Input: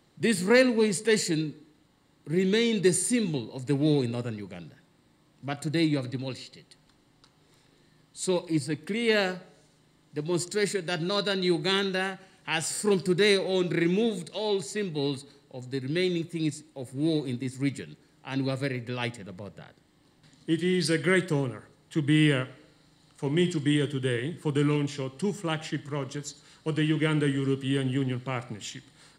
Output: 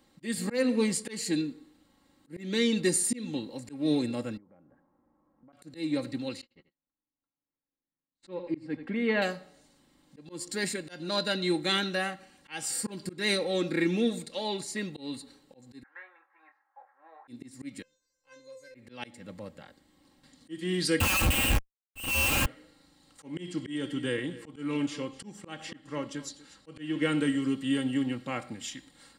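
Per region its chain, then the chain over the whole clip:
0:04.37–0:05.53: low-pass filter 1,200 Hz 24 dB per octave + low-shelf EQ 480 Hz −7.5 dB + downward compressor 12 to 1, threshold −52 dBFS
0:06.41–0:09.22: low-pass filter 2,100 Hz + noise gate −51 dBFS, range −34 dB + single-tap delay 85 ms −13.5 dB
0:15.83–0:17.28: elliptic band-pass filter 780–1,700 Hz, stop band 80 dB + double-tracking delay 25 ms −7.5 dB
0:17.82–0:18.75: parametric band 6,500 Hz +15 dB 0.51 octaves + tuned comb filter 520 Hz, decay 0.34 s, mix 100%
0:21.00–0:22.46: voice inversion scrambler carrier 3,000 Hz + comparator with hysteresis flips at −35 dBFS + parametric band 94 Hz +11.5 dB 1.8 octaves
0:23.40–0:27.06: high-shelf EQ 11,000 Hz −10 dB + single-tap delay 244 ms −18 dB
whole clip: comb filter 3.7 ms, depth 61%; volume swells 249 ms; high-shelf EQ 11,000 Hz +5 dB; level −2.5 dB

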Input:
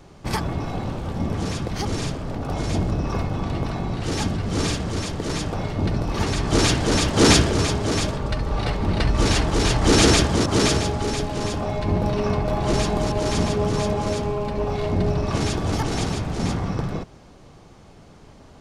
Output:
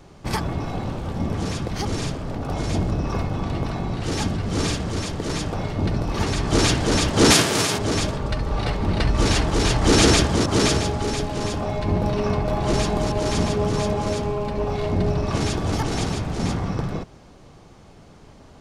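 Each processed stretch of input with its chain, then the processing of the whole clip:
0:07.30–0:07.77: spectral envelope flattened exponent 0.6 + high-pass filter 110 Hz 24 dB per octave
whole clip: no processing

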